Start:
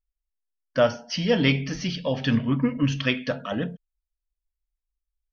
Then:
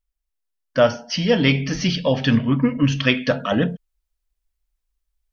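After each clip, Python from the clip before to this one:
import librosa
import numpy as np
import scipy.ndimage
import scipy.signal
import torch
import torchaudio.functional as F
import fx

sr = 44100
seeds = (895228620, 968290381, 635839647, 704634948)

y = fx.rider(x, sr, range_db=3, speed_s=0.5)
y = y * 10.0 ** (5.5 / 20.0)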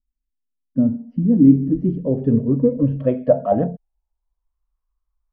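y = fx.low_shelf(x, sr, hz=220.0, db=6.0)
y = fx.filter_sweep_lowpass(y, sr, from_hz=250.0, to_hz=1100.0, start_s=1.14, end_s=4.64, q=5.4)
y = y * 10.0 ** (-5.5 / 20.0)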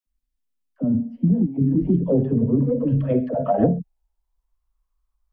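y = fx.over_compress(x, sr, threshold_db=-17.0, ratio=-0.5)
y = fx.dispersion(y, sr, late='lows', ms=70.0, hz=460.0)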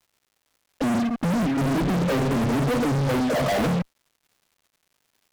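y = fx.fuzz(x, sr, gain_db=40.0, gate_db=-40.0)
y = fx.dmg_crackle(y, sr, seeds[0], per_s=290.0, level_db=-44.0)
y = y * 10.0 ** (-8.0 / 20.0)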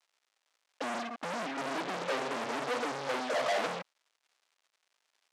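y = fx.bandpass_edges(x, sr, low_hz=590.0, high_hz=7200.0)
y = y * 10.0 ** (-4.5 / 20.0)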